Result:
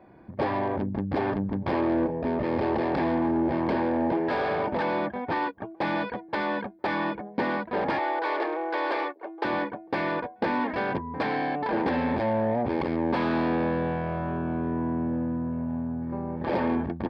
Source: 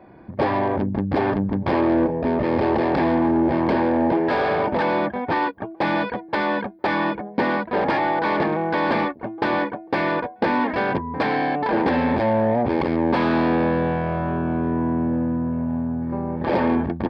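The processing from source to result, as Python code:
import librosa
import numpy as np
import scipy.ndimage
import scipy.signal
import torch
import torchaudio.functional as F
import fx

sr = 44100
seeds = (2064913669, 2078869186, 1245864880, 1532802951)

y = fx.steep_highpass(x, sr, hz=320.0, slope=48, at=(7.99, 9.45))
y = y * librosa.db_to_amplitude(-6.0)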